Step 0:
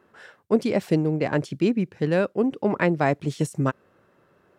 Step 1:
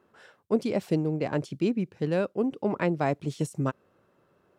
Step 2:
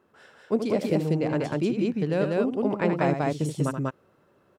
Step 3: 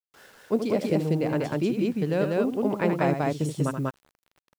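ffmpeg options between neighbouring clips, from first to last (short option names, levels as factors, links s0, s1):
-af "equalizer=f=1800:t=o:w=0.61:g=-4.5,volume=0.596"
-af "aecho=1:1:78.72|192.4:0.398|0.891"
-af "acrusher=bits=8:mix=0:aa=0.000001"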